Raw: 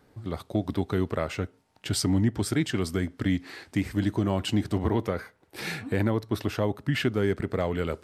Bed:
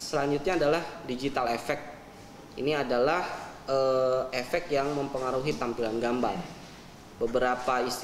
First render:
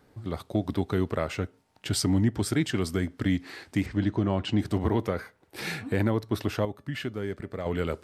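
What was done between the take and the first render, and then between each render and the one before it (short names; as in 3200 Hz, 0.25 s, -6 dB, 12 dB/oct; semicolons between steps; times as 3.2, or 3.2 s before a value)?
3.86–4.59 air absorption 120 m; 6.65–7.66 resonator 580 Hz, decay 0.19 s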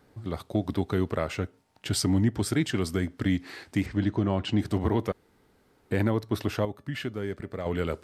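5.12–5.91 room tone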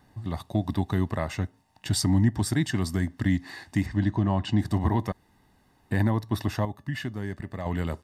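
comb 1.1 ms, depth 63%; dynamic EQ 2700 Hz, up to -6 dB, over -52 dBFS, Q 3.1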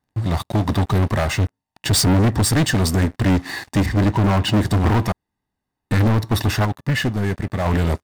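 sample leveller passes 5; upward expander 1.5:1, over -30 dBFS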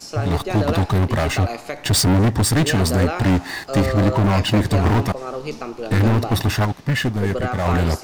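add bed +0.5 dB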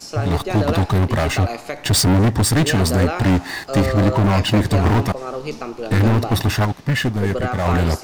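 gain +1 dB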